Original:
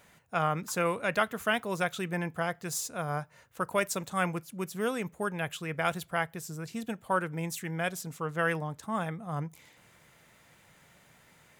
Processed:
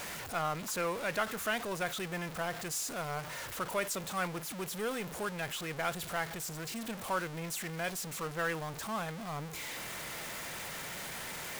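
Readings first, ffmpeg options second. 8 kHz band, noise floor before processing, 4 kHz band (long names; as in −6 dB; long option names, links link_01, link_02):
+1.0 dB, −61 dBFS, +1.0 dB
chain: -af "aeval=exprs='val(0)+0.5*0.0376*sgn(val(0))':channel_layout=same,equalizer=frequency=110:width=0.66:gain=-7,volume=-7dB"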